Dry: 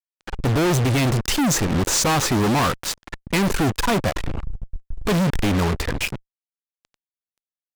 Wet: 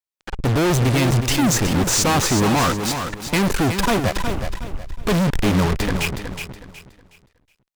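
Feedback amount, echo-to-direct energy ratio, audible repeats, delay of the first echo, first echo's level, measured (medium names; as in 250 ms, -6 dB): 30%, -7.0 dB, 3, 368 ms, -7.5 dB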